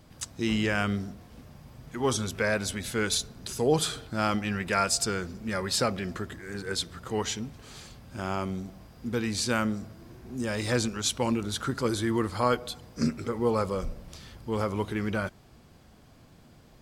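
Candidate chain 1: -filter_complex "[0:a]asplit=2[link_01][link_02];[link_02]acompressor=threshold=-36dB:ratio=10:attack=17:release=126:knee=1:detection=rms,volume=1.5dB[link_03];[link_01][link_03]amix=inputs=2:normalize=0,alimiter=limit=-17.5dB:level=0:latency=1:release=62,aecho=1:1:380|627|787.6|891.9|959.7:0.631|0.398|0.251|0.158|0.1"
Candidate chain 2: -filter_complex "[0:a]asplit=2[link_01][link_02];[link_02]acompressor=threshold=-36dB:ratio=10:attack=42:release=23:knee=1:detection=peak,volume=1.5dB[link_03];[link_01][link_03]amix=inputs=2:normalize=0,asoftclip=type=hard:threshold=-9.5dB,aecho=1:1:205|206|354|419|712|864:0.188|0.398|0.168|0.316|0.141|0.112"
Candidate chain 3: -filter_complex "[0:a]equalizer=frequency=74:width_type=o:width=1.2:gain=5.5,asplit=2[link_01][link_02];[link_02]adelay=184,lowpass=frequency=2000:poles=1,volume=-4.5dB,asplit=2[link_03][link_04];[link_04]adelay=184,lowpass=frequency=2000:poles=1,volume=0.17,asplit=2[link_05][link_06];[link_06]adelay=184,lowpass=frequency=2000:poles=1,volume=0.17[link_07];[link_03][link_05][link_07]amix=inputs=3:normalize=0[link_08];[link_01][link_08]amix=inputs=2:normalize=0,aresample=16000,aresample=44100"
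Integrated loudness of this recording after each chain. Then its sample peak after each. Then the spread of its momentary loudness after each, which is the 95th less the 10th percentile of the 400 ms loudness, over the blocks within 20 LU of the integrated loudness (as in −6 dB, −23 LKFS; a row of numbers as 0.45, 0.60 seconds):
−27.5, −24.0, −28.5 LKFS; −13.0, −7.0, −11.0 dBFS; 7, 10, 13 LU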